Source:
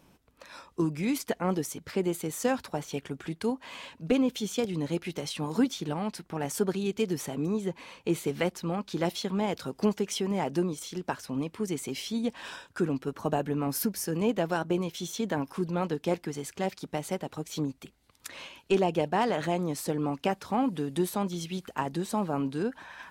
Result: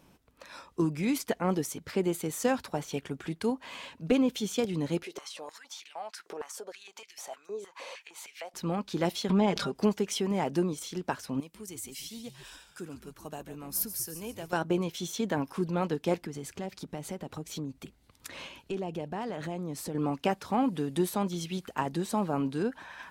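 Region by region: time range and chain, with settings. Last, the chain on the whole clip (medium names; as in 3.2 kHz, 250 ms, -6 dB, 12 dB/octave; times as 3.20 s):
5.03–8.54 s: peaking EQ 6 kHz +6 dB 1.3 oct + compression, threshold -40 dBFS + step-sequenced high-pass 6.5 Hz 430–2300 Hz
9.29–9.75 s: distance through air 55 m + comb 5 ms, depth 74% + swell ahead of each attack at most 40 dB/s
11.40–14.53 s: pre-emphasis filter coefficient 0.8 + frequency-shifting echo 143 ms, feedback 40%, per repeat -95 Hz, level -11 dB
16.22–19.95 s: bass shelf 370 Hz +6 dB + compression 2.5:1, threshold -37 dBFS
whole clip: none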